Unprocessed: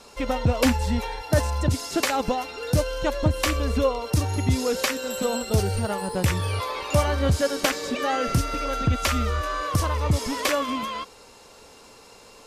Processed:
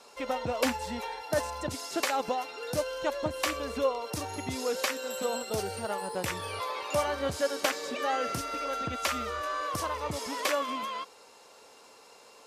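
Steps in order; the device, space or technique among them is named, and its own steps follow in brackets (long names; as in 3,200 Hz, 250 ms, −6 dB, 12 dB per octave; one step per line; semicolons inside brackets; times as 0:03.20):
filter by subtraction (in parallel: low-pass filter 650 Hz 12 dB per octave + polarity inversion)
on the sum: level −6 dB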